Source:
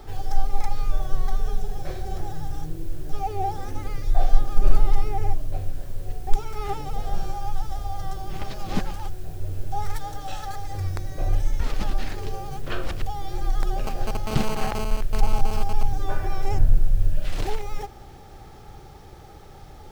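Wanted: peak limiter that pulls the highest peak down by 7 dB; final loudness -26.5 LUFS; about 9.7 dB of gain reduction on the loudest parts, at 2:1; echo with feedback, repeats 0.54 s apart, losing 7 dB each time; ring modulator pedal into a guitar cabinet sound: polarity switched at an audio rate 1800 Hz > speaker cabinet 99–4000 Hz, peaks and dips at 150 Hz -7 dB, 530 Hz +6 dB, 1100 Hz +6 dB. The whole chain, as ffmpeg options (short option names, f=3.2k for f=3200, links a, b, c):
-af "acompressor=threshold=-24dB:ratio=2,alimiter=limit=-19dB:level=0:latency=1,aecho=1:1:540|1080|1620|2160|2700:0.447|0.201|0.0905|0.0407|0.0183,aeval=exprs='val(0)*sgn(sin(2*PI*1800*n/s))':c=same,highpass=99,equalizer=f=150:t=q:w=4:g=-7,equalizer=f=530:t=q:w=4:g=6,equalizer=f=1.1k:t=q:w=4:g=6,lowpass=f=4k:w=0.5412,lowpass=f=4k:w=1.3066,volume=-3.5dB"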